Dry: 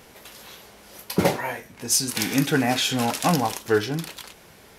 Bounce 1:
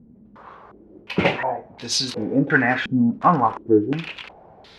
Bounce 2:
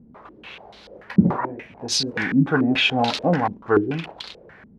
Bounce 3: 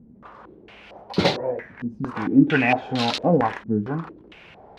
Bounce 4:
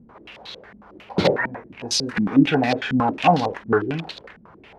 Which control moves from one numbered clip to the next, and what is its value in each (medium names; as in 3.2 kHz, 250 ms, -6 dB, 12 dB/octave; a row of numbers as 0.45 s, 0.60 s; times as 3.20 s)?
step-sequenced low-pass, rate: 2.8 Hz, 6.9 Hz, 4.4 Hz, 11 Hz